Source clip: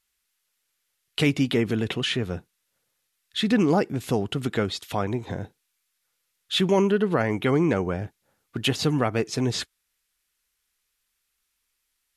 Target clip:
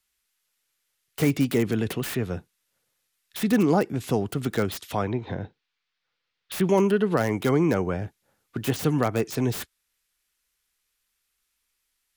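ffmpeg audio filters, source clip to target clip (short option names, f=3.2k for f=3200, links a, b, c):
-filter_complex "[0:a]asettb=1/sr,asplit=3[a][b][c];[a]atrim=end=5.074[d];[b]atrim=start=5.07:end=6.65,asetpts=PTS-STARTPTS,afade=t=in:d=0.004:c=qsin,afade=t=out:st=1.576:d=0.004:c=qsin,lowpass=f=4.5k:w=0.5412,lowpass=f=4.5k:w=1.3066[e];[c]atrim=start=6.646[f];[d][e]acrossfade=d=0.004:c1=hsin:c2=qsin[g];[g][f]acrossfade=d=0.004:c1=qsin:c2=hsin,acrossover=split=130|660|1800[h][i][j][k];[k]aeval=exprs='(mod(28.2*val(0)+1,2)-1)/28.2':c=same[l];[h][i][j][l]amix=inputs=4:normalize=0"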